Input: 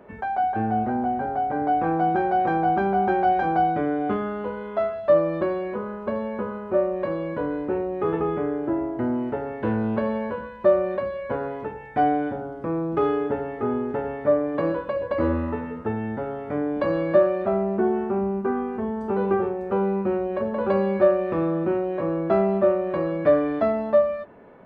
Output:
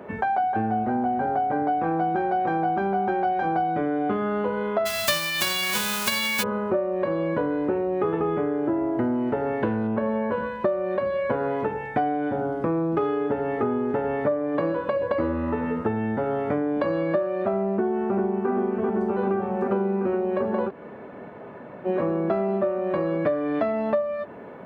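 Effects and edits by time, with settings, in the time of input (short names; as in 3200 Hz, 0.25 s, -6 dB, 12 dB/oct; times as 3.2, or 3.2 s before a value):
4.85–6.42 spectral whitening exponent 0.1
9.87–10.32 LPF 2300 Hz
17.72–18.5 echo throw 0.39 s, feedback 85%, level -3.5 dB
20.68–21.87 room tone, crossfade 0.06 s
23.55–23.95 bell 2500 Hz +5 dB
whole clip: compressor 10:1, threshold -29 dBFS; HPF 88 Hz; gain +8 dB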